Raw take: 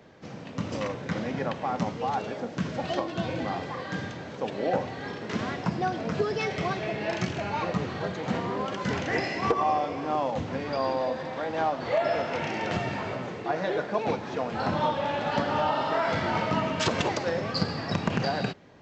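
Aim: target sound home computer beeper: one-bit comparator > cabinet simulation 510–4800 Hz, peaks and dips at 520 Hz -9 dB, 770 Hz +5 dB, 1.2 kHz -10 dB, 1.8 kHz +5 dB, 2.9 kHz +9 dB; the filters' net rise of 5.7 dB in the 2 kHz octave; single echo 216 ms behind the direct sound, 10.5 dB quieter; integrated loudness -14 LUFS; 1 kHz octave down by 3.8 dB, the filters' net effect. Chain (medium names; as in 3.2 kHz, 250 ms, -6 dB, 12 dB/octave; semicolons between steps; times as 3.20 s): peaking EQ 1 kHz -7 dB; peaking EQ 2 kHz +5 dB; delay 216 ms -10.5 dB; one-bit comparator; cabinet simulation 510–4800 Hz, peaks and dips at 520 Hz -9 dB, 770 Hz +5 dB, 1.2 kHz -10 dB, 1.8 kHz +5 dB, 2.9 kHz +9 dB; trim +15 dB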